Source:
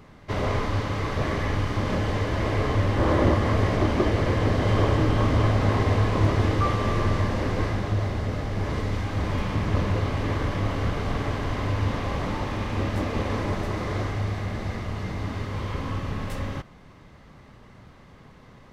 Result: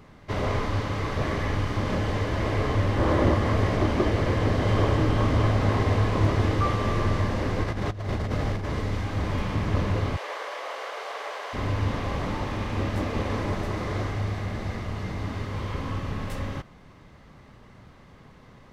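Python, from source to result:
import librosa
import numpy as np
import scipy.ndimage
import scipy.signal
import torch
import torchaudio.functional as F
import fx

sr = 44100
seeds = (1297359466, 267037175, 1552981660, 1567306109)

y = fx.over_compress(x, sr, threshold_db=-28.0, ratio=-0.5, at=(7.63, 8.64), fade=0.02)
y = fx.steep_highpass(y, sr, hz=480.0, slope=36, at=(10.16, 11.53), fade=0.02)
y = y * 10.0 ** (-1.0 / 20.0)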